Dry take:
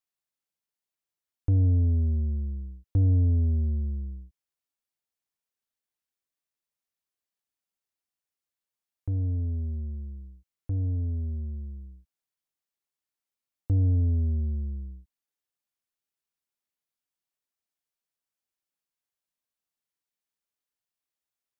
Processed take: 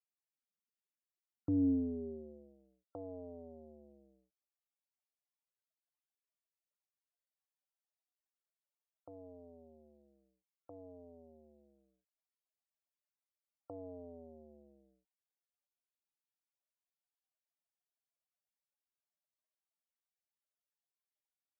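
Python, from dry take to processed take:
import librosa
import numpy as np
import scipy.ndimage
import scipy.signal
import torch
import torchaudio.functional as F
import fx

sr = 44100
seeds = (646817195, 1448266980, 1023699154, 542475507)

y = fx.spec_topn(x, sr, count=64)
y = fx.filter_sweep_highpass(y, sr, from_hz=220.0, to_hz=630.0, start_s=1.45, end_s=2.57, q=3.1)
y = F.gain(torch.from_numpy(y), -4.5).numpy()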